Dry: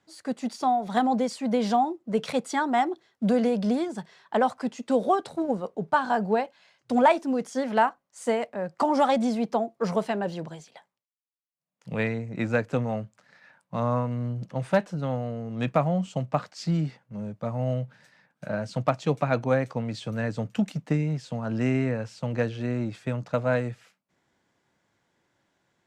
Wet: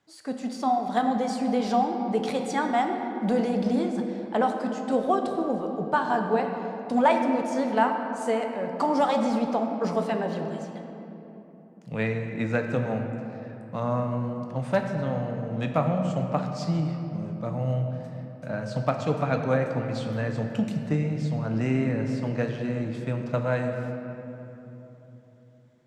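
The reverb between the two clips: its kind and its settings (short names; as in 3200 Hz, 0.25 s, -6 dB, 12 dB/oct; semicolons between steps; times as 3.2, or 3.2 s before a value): shoebox room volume 190 m³, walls hard, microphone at 0.32 m; gain -2 dB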